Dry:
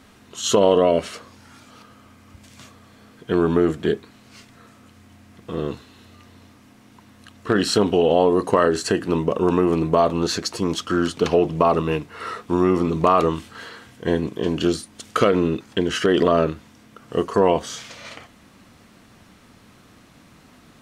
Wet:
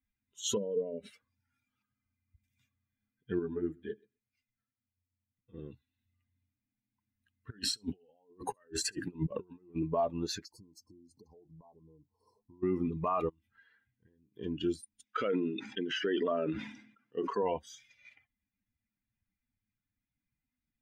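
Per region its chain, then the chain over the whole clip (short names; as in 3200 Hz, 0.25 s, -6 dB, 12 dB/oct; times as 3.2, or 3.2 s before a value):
0.57–1.1 compressor 8:1, threshold -27 dBFS + small resonant body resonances 210/430/3900 Hz, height 13 dB, ringing for 25 ms
3.39–5.54 flange 1.5 Hz, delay 6.5 ms, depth 5.6 ms, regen -48% + feedback echo 0.127 s, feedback 25%, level -14.5 dB
7.5–9.76 negative-ratio compressor -25 dBFS, ratio -0.5 + thin delay 68 ms, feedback 33%, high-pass 2400 Hz, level -18 dB
10.45–12.63 brick-wall FIR band-stop 1100–4100 Hz + compressor 10:1, threshold -29 dBFS
13.29–14.34 compressor 8:1, threshold -34 dBFS + high shelf 3300 Hz -4 dB
15.04–17.43 BPF 190–6100 Hz + sustainer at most 41 dB/s
whole clip: per-bin expansion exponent 2; limiter -16 dBFS; gain -6.5 dB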